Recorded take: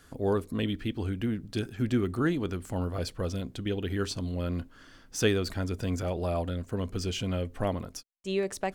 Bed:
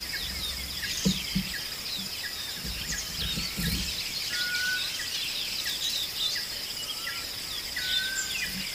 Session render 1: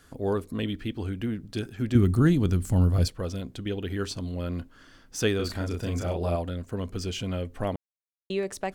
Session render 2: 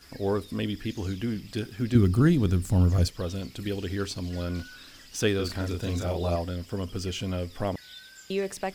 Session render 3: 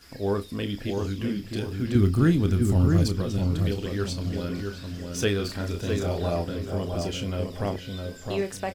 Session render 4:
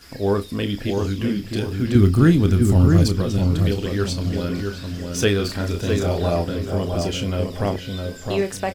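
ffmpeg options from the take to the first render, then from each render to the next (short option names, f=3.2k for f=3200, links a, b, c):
-filter_complex "[0:a]asettb=1/sr,asplit=3[a][b][c];[a]atrim=end=1.954[d];[b]atrim=start=1.95:end=3.08,asetpts=PTS-STARTPTS,afade=t=in:d=0.004:c=qsin,afade=t=out:st=1.126:d=0.004:c=qsin,bass=f=250:g=13,treble=f=4k:g=8[e];[c]atrim=start=3.076[f];[d][e]acrossfade=d=0.004:c1=hsin:c2=qsin[g];[g][f]acrossfade=d=0.004:c1=qsin:c2=hsin,asettb=1/sr,asplit=3[h][i][j];[h]atrim=end=5.364[k];[i]atrim=start=5.36:end=6.36,asetpts=PTS-STARTPTS,afade=t=in:d=0.004:c=qsin,afade=t=out:st=0.996:d=0.004:c=qsin,asplit=2[l][m];[m]adelay=35,volume=-3dB[n];[l][n]amix=inputs=2:normalize=0,atrim=end_sample=44100[o];[j]atrim=start=6.356[p];[k][o]acrossfade=d=0.004:c1=hsin:c2=qsin[q];[q][p]acrossfade=d=0.004:c1=qsin:c2=hsin,asplit=3[r][s][t];[r]atrim=end=7.76,asetpts=PTS-STARTPTS,afade=t=out:st=7.756:d=0.004:c=hsin[u];[s]atrim=start=7.76:end=8.3,asetpts=PTS-STARTPTS,volume=0[v];[t]atrim=start=8.3,asetpts=PTS-STARTPTS,afade=t=in:d=0.004:c=hsin[w];[u][v][w]concat=n=3:v=0:a=1"
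-filter_complex "[1:a]volume=-18.5dB[a];[0:a][a]amix=inputs=2:normalize=0"
-filter_complex "[0:a]asplit=2[a][b];[b]adelay=30,volume=-9.5dB[c];[a][c]amix=inputs=2:normalize=0,asplit=2[d][e];[e]adelay=659,lowpass=f=1.5k:p=1,volume=-4dB,asplit=2[f][g];[g]adelay=659,lowpass=f=1.5k:p=1,volume=0.34,asplit=2[h][i];[i]adelay=659,lowpass=f=1.5k:p=1,volume=0.34,asplit=2[j][k];[k]adelay=659,lowpass=f=1.5k:p=1,volume=0.34[l];[d][f][h][j][l]amix=inputs=5:normalize=0"
-af "volume=6dB"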